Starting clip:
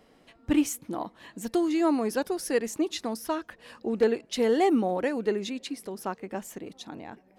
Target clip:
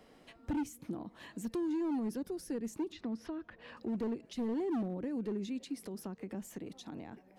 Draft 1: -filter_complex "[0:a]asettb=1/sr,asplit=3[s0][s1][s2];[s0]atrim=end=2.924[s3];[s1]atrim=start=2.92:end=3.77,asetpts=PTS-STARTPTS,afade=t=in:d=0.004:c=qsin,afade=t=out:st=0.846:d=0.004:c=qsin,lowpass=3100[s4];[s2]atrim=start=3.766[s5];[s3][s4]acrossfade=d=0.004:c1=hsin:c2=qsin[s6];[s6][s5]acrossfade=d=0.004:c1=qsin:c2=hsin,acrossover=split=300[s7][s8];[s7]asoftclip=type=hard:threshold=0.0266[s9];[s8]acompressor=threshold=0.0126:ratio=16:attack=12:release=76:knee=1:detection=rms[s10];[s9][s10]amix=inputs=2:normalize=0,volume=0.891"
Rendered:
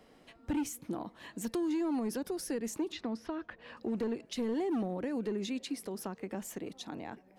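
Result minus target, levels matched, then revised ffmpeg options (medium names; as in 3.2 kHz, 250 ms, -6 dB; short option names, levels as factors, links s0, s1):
compression: peak gain reduction -9 dB
-filter_complex "[0:a]asettb=1/sr,asplit=3[s0][s1][s2];[s0]atrim=end=2.924[s3];[s1]atrim=start=2.92:end=3.77,asetpts=PTS-STARTPTS,afade=t=in:d=0.004:c=qsin,afade=t=out:st=0.846:d=0.004:c=qsin,lowpass=3100[s4];[s2]atrim=start=3.766[s5];[s3][s4]acrossfade=d=0.004:c1=hsin:c2=qsin[s6];[s6][s5]acrossfade=d=0.004:c1=qsin:c2=hsin,acrossover=split=300[s7][s8];[s7]asoftclip=type=hard:threshold=0.0266[s9];[s8]acompressor=threshold=0.00422:ratio=16:attack=12:release=76:knee=1:detection=rms[s10];[s9][s10]amix=inputs=2:normalize=0,volume=0.891"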